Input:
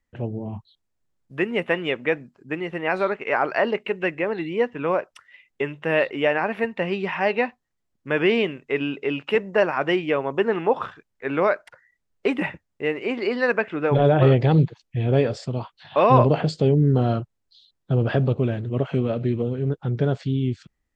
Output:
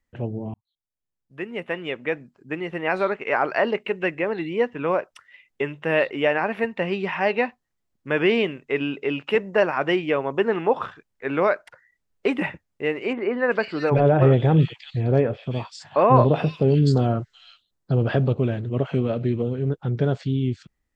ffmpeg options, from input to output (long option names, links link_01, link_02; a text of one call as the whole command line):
ffmpeg -i in.wav -filter_complex "[0:a]asettb=1/sr,asplit=3[link_01][link_02][link_03];[link_01]atrim=end=13.134[link_04];[link_02]atrim=start=13.13:end=17.92,asetpts=PTS-STARTPTS,afade=type=in:duration=0.004:curve=qsin,afade=type=out:start_time=4.786:duration=0.004:curve=qsin,acrossover=split=2500[link_05][link_06];[link_06]adelay=380[link_07];[link_05][link_07]amix=inputs=2:normalize=0,atrim=end_sample=211239[link_08];[link_03]atrim=start=17.916[link_09];[link_04][link_08]acrossfade=duration=0.004:curve1=hsin:curve2=qsin[link_10];[link_10][link_09]acrossfade=duration=0.004:curve1=qsin:curve2=hsin,asplit=2[link_11][link_12];[link_11]atrim=end=0.54,asetpts=PTS-STARTPTS,afade=type=out:start_time=0.536:duration=0.004:curve=hsin[link_13];[link_12]atrim=start=0.54,asetpts=PTS-STARTPTS,afade=type=in:duration=2.26[link_14];[link_13][link_14]concat=n=2:v=0:a=1" out.wav